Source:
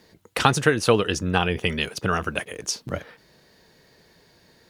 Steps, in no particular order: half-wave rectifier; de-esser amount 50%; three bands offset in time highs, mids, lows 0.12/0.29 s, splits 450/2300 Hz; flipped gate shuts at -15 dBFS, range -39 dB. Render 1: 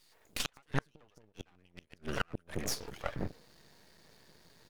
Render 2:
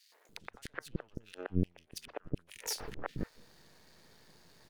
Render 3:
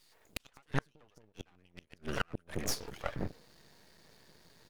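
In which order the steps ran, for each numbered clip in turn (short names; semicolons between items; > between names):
three bands offset in time > de-esser > half-wave rectifier > flipped gate; de-esser > half-wave rectifier > flipped gate > three bands offset in time; three bands offset in time > half-wave rectifier > de-esser > flipped gate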